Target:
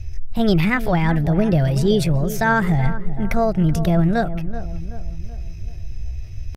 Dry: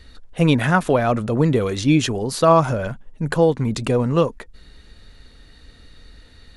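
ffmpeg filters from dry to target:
-filter_complex "[0:a]asetrate=60591,aresample=44100,atempo=0.727827,equalizer=f=125:t=o:w=1:g=4,equalizer=f=250:t=o:w=1:g=-11,equalizer=f=500:t=o:w=1:g=-3,equalizer=f=1k:t=o:w=1:g=-8,equalizer=f=4k:t=o:w=1:g=-5,equalizer=f=8k:t=o:w=1:g=-6,areverse,acompressor=mode=upward:threshold=-40dB:ratio=2.5,areverse,aemphasis=mode=reproduction:type=riaa,crystalizer=i=4:c=0,asplit=2[a][b];[b]adelay=379,lowpass=f=1.4k:p=1,volume=-12dB,asplit=2[c][d];[d]adelay=379,lowpass=f=1.4k:p=1,volume=0.5,asplit=2[e][f];[f]adelay=379,lowpass=f=1.4k:p=1,volume=0.5,asplit=2[g][h];[h]adelay=379,lowpass=f=1.4k:p=1,volume=0.5,asplit=2[i][j];[j]adelay=379,lowpass=f=1.4k:p=1,volume=0.5[k];[c][e][g][i][k]amix=inputs=5:normalize=0[l];[a][l]amix=inputs=2:normalize=0"

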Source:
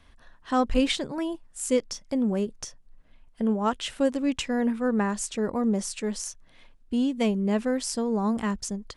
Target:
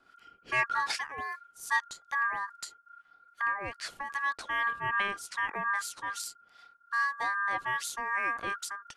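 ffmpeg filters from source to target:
-filter_complex "[0:a]aeval=exprs='val(0)*sin(2*PI*1400*n/s)':c=same,asettb=1/sr,asplit=3[a][b][c];[a]atrim=end=3.574[d];[b]atrim=start=3.57:end=4.1,asetpts=PTS-STARTPTS,afade=t=in:d=0.004:c=qsin,afade=t=out:st=0.526:d=0.004:c=qsin,acompressor=threshold=-30dB:ratio=6[e];[c]atrim=start=4.096[f];[d][e]acrossfade=d=0.004:c1=hsin:c2=qsin[g];[g][f]acrossfade=d=0.004:c1=qsin:c2=hsin,acrossover=split=1000[h][i];[h]aeval=exprs='val(0)*(1-0.7/2+0.7/2*cos(2*PI*2.5*n/s))':c=same[j];[i]aeval=exprs='val(0)*(1-0.7/2-0.7/2*cos(2*PI*2.5*n/s))':c=same[k];[j][k]amix=inputs=2:normalize=0"

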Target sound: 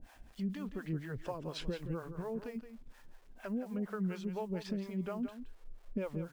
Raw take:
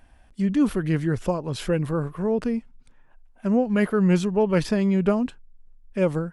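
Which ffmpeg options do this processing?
-filter_complex "[0:a]lowpass=5.1k,equalizer=f=71:t=o:w=1.3:g=-5.5,acompressor=threshold=-36dB:ratio=6,acrusher=bits=10:mix=0:aa=0.000001,acrossover=split=440[a][b];[a]aeval=exprs='val(0)*(1-1/2+1/2*cos(2*PI*4.2*n/s))':c=same[c];[b]aeval=exprs='val(0)*(1-1/2-1/2*cos(2*PI*4.2*n/s))':c=same[d];[c][d]amix=inputs=2:normalize=0,aecho=1:1:171:0.299,volume=4dB"

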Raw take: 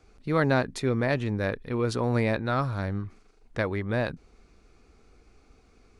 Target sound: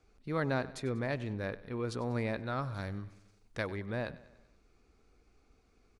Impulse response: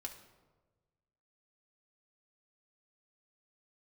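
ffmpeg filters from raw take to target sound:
-filter_complex "[0:a]asettb=1/sr,asplit=3[a][b][c];[a]atrim=end=2.744[d];[b]atrim=start=2.74:end=3.75,asetpts=PTS-STARTPTS,afade=t=in:d=0.004:c=qsin,afade=t=out:st=1.006:d=0.004:c=qsin,highshelf=f=2.8k:g=9.5[e];[c]atrim=start=3.746[f];[d][e]acrossfade=d=0.004:c1=hsin:c2=qsin[g];[g][f]acrossfade=d=0.004:c1=qsin:c2=hsin,aecho=1:1:96|192|288|384|480:0.126|0.0692|0.0381|0.0209|0.0115,volume=-9dB"

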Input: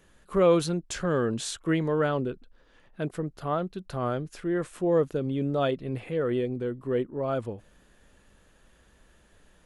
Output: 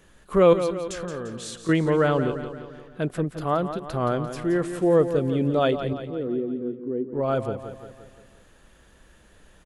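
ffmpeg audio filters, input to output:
-filter_complex "[0:a]asettb=1/sr,asplit=3[a][b][c];[a]atrim=end=0.534[d];[b]atrim=start=0.53:end=1.69,asetpts=PTS-STARTPTS,afade=t=in:d=0.004:c=qsin,afade=t=out:st=1.156:d=0.004:c=qsin,acompressor=threshold=-41dB:ratio=2.5[e];[c]atrim=start=1.686[f];[d][e]acrossfade=d=0.004:c1=hsin:c2=qsin[g];[g][f]acrossfade=d=0.004:c1=qsin:c2=hsin,asettb=1/sr,asplit=3[h][i][j];[h]atrim=end=5.934[k];[i]atrim=start=5.93:end=7.13,asetpts=PTS-STARTPTS,afade=t=in:d=0.004:c=qsin,afade=t=out:st=1.196:d=0.004:c=qsin,bandpass=f=290:t=q:w=2.4:csg=0[l];[j]atrim=start=7.126[m];[k][l]acrossfade=d=0.004:c1=hsin:c2=qsin[n];[n][m]acrossfade=d=0.004:c1=qsin:c2=hsin,aecho=1:1:173|346|519|692|865|1038:0.316|0.168|0.0888|0.0471|0.025|0.0132,volume=4.5dB"

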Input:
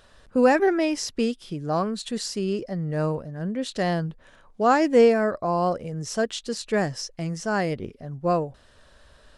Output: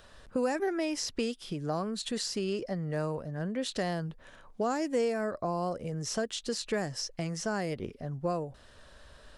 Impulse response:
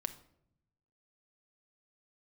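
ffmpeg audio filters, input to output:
-filter_complex "[0:a]acrossover=split=480|6300[a][b][c];[a]acompressor=threshold=-34dB:ratio=4[d];[b]acompressor=threshold=-34dB:ratio=4[e];[c]acompressor=threshold=-42dB:ratio=4[f];[d][e][f]amix=inputs=3:normalize=0"

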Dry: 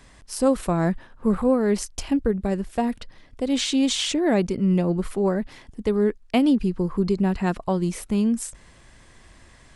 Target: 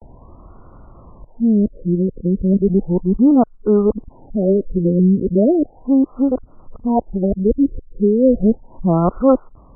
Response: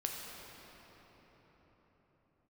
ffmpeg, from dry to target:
-af "areverse,acompressor=mode=upward:threshold=-40dB:ratio=2.5,afftfilt=real='re*lt(b*sr/1024,520*pow(1500/520,0.5+0.5*sin(2*PI*0.35*pts/sr)))':imag='im*lt(b*sr/1024,520*pow(1500/520,0.5+0.5*sin(2*PI*0.35*pts/sr)))':win_size=1024:overlap=0.75,volume=7dB"

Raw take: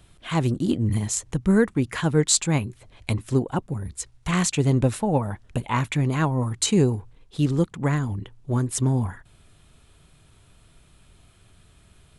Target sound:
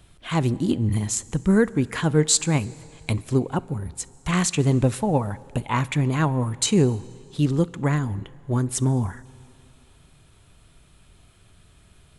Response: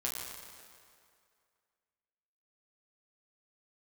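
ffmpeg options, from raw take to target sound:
-filter_complex "[0:a]asplit=2[a][b];[1:a]atrim=start_sample=2205,asetrate=35280,aresample=44100[c];[b][c]afir=irnorm=-1:irlink=0,volume=-22dB[d];[a][d]amix=inputs=2:normalize=0"

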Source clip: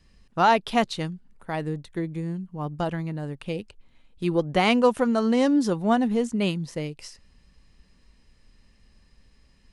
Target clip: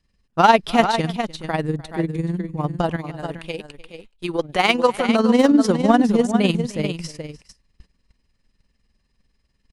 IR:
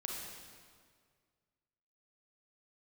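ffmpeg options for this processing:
-filter_complex "[0:a]asettb=1/sr,asplit=3[a][b][c];[a]atrim=end=2.964[d];[b]atrim=start=2.96:end=5.09,asetpts=PTS-STARTPTS,afade=t=in:d=0.004:c=qsin,afade=t=out:st=2.126:d=0.004:c=qsin,equalizer=f=110:w=0.35:g=-13[e];[c]atrim=start=5.086[f];[d][e]acrossfade=d=0.004:c1=hsin:c2=qsin[g];[g][f]acrossfade=d=0.004:c1=qsin:c2=hsin,aecho=1:1:301|426:0.1|0.355,asoftclip=type=hard:threshold=-12dB,tremolo=f=20:d=0.621,agate=range=-15dB:threshold=-51dB:ratio=16:detection=peak,volume=8.5dB"

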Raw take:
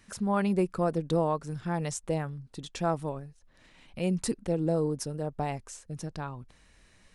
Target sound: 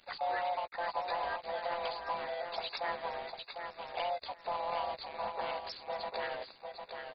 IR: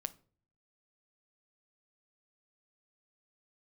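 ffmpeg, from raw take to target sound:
-filter_complex "[0:a]afftfilt=real='real(if(lt(b,1008),b+24*(1-2*mod(floor(b/24),2)),b),0)':imag='imag(if(lt(b,1008),b+24*(1-2*mod(floor(b/24),2)),b),0)':win_size=2048:overlap=0.75,highpass=f=570:w=0.5412,highpass=f=570:w=1.3066,aemphasis=mode=production:type=75kf,acompressor=threshold=-43dB:ratio=6,aeval=exprs='val(0)*gte(abs(val(0)),0.00376)':c=same,asplit=4[a][b][c][d];[b]asetrate=33038,aresample=44100,atempo=1.33484,volume=-7dB[e];[c]asetrate=35002,aresample=44100,atempo=1.25992,volume=-12dB[f];[d]asetrate=52444,aresample=44100,atempo=0.840896,volume=-11dB[g];[a][e][f][g]amix=inputs=4:normalize=0,asplit=2[h][i];[i]adelay=14,volume=-11dB[j];[h][j]amix=inputs=2:normalize=0,aecho=1:1:751|1502|2253:0.501|0.0752|0.0113,volume=7dB" -ar 44100 -c:a mp2 -b:a 32k

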